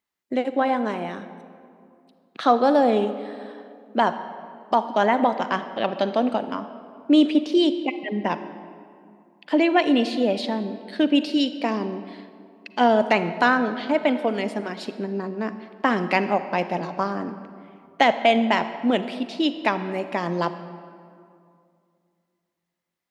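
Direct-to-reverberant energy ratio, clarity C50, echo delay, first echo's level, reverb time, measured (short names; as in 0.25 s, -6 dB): 11.0 dB, 11.5 dB, none, none, 2.4 s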